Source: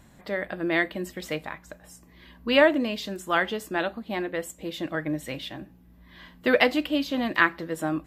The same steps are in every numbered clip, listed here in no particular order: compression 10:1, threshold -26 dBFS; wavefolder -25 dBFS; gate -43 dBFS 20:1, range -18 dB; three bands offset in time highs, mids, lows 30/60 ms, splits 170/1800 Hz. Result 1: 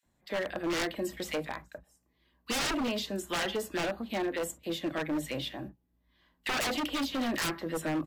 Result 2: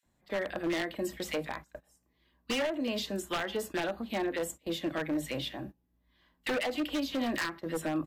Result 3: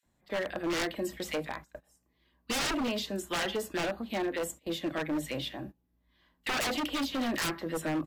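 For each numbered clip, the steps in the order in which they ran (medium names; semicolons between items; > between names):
gate > three bands offset in time > wavefolder > compression; three bands offset in time > compression > wavefolder > gate; three bands offset in time > gate > wavefolder > compression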